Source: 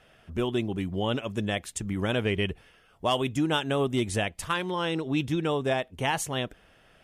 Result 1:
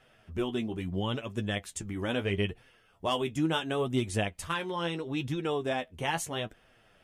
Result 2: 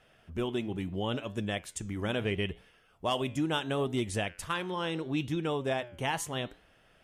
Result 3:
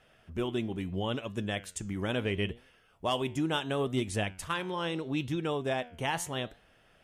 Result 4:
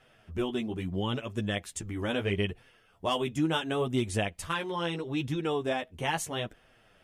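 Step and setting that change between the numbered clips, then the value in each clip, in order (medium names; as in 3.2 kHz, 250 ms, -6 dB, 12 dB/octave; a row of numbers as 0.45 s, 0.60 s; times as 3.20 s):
flange, regen: +33%, -87%, +86%, -7%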